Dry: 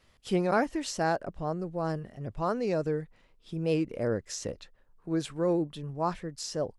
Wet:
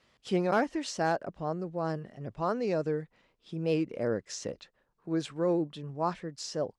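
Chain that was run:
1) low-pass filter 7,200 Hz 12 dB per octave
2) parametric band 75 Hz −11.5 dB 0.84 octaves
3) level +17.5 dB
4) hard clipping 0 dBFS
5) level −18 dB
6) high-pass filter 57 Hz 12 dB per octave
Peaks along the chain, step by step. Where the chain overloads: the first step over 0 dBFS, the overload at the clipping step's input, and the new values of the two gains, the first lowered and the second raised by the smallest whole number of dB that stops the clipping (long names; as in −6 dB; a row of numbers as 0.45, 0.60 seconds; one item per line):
−15.0, −14.5, +3.0, 0.0, −18.0, −16.5 dBFS
step 3, 3.0 dB
step 3 +14.5 dB, step 5 −15 dB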